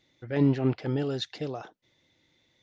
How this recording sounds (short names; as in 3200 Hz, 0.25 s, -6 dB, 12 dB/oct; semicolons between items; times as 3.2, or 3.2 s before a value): noise floor -70 dBFS; spectral tilt -7.0 dB/oct